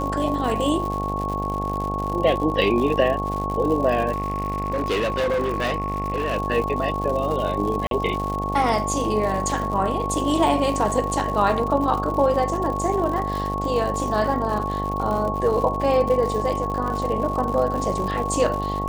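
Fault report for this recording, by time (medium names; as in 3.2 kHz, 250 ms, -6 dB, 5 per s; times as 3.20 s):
buzz 50 Hz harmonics 18 -28 dBFS
crackle 130 per s -28 dBFS
whine 1.1 kHz -26 dBFS
4.11–6.38 s: clipped -19 dBFS
7.87–7.91 s: dropout 42 ms
14.59–14.60 s: dropout 6.5 ms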